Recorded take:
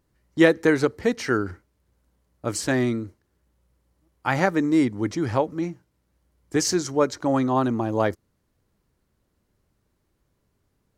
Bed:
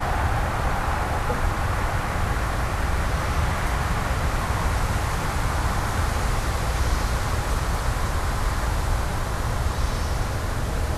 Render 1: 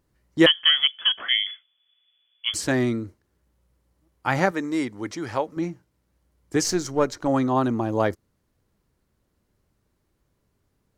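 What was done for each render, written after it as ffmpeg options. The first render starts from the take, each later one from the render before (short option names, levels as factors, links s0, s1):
-filter_complex "[0:a]asettb=1/sr,asplit=3[s0][s1][s2];[s0]atrim=end=0.464[s3];[s1]atrim=start=0.46:end=2.54,asetpts=PTS-STARTPTS,afade=t=in:d=0.004:c=qsin,afade=t=out:st=2.076:d=0.004:c=qsin,lowpass=f=3000:t=q:w=0.5098,lowpass=f=3000:t=q:w=0.6013,lowpass=f=3000:t=q:w=0.9,lowpass=f=3000:t=q:w=2.563,afreqshift=-3500[s4];[s2]atrim=start=2.536[s5];[s3][s4]acrossfade=d=0.004:c1=hsin:c2=qsin[s6];[s6][s5]acrossfade=d=0.004:c1=qsin:c2=hsin,asettb=1/sr,asplit=3[s7][s8][s9];[s7]atrim=end=4.514[s10];[s8]atrim=start=4.51:end=5.57,asetpts=PTS-STARTPTS,afade=t=in:d=0.004:c=qsin,afade=t=out:st=1.056:d=0.004:c=qsin,lowshelf=f=360:g=-11[s11];[s9]atrim=start=5.566[s12];[s10][s11]acrossfade=d=0.004:c1=hsin:c2=qsin[s13];[s13][s12]acrossfade=d=0.004:c1=qsin:c2=hsin,asettb=1/sr,asplit=3[s14][s15][s16];[s14]atrim=end=6.644[s17];[s15]atrim=start=6.64:end=7.28,asetpts=PTS-STARTPTS,afade=t=in:d=0.004:c=qsin,afade=t=out:st=0.636:d=0.004:c=qsin,aeval=exprs='if(lt(val(0),0),0.708*val(0),val(0))':c=same[s18];[s16]atrim=start=7.276[s19];[s17][s18]acrossfade=d=0.004:c1=hsin:c2=qsin[s20];[s20][s19]acrossfade=d=0.004:c1=qsin:c2=hsin"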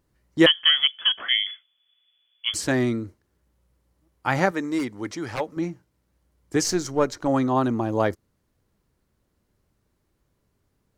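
-filter_complex "[0:a]asplit=3[s0][s1][s2];[s0]afade=t=out:st=4.78:d=0.02[s3];[s1]aeval=exprs='0.0944*(abs(mod(val(0)/0.0944+3,4)-2)-1)':c=same,afade=t=in:st=4.78:d=0.02,afade=t=out:st=5.39:d=0.02[s4];[s2]afade=t=in:st=5.39:d=0.02[s5];[s3][s4][s5]amix=inputs=3:normalize=0"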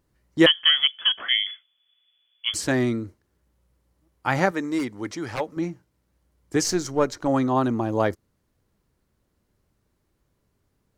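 -af anull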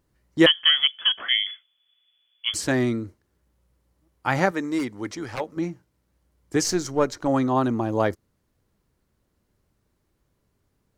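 -filter_complex "[0:a]asettb=1/sr,asplit=3[s0][s1][s2];[s0]atrim=end=5.154[s3];[s1]atrim=start=5.15:end=5.58,asetpts=PTS-STARTPTS,afade=t=in:d=0.004:c=qsin,afade=t=out:st=0.426:d=0.004:c=qsin,tremolo=f=97:d=0.4[s4];[s2]atrim=start=5.576[s5];[s3][s4]acrossfade=d=0.004:c1=hsin:c2=qsin[s6];[s6][s5]acrossfade=d=0.004:c1=qsin:c2=hsin"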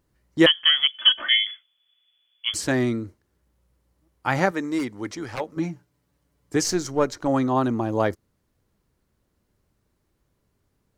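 -filter_complex "[0:a]asettb=1/sr,asplit=3[s0][s1][s2];[s0]atrim=end=0.944[s3];[s1]atrim=start=0.94:end=1.45,asetpts=PTS-STARTPTS,afade=t=in:d=0.004:c=qsin,afade=t=out:st=0.506:d=0.004:c=qsin,aecho=1:1:3.3:0.94,atrim=end_sample=22491[s4];[s2]atrim=start=1.446[s5];[s3][s4]acrossfade=d=0.004:c1=hsin:c2=qsin[s6];[s6][s5]acrossfade=d=0.004:c1=qsin:c2=hsin,asettb=1/sr,asplit=3[s7][s8][s9];[s7]atrim=end=5.564[s10];[s8]atrim=start=5.56:end=6.55,asetpts=PTS-STARTPTS,afade=t=in:d=0.004:c=qsin,afade=t=out:st=0.986:d=0.004:c=qsin,aecho=1:1:7:0.63,atrim=end_sample=43659[s11];[s9]atrim=start=6.546[s12];[s10][s11]acrossfade=d=0.004:c1=hsin:c2=qsin[s13];[s13][s12]acrossfade=d=0.004:c1=qsin:c2=hsin"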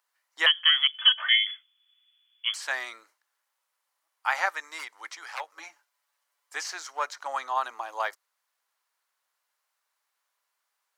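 -filter_complex "[0:a]highpass=f=860:w=0.5412,highpass=f=860:w=1.3066,acrossover=split=3700[s0][s1];[s1]acompressor=threshold=0.0112:ratio=4:attack=1:release=60[s2];[s0][s2]amix=inputs=2:normalize=0"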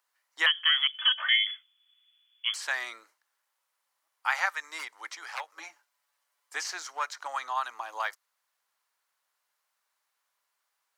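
-filter_complex "[0:a]acrossover=split=870|2300[s0][s1][s2];[s0]acompressor=threshold=0.00631:ratio=6[s3];[s2]alimiter=limit=0.1:level=0:latency=1:release=45[s4];[s3][s1][s4]amix=inputs=3:normalize=0"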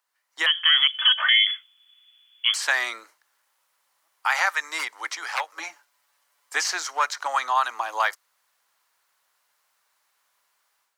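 -filter_complex "[0:a]acrossover=split=470|4300[s0][s1][s2];[s1]alimiter=limit=0.0944:level=0:latency=1:release=29[s3];[s0][s3][s2]amix=inputs=3:normalize=0,dynaudnorm=f=270:g=3:m=2.99"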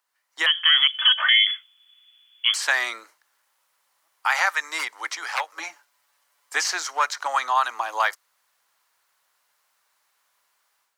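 -af "volume=1.12"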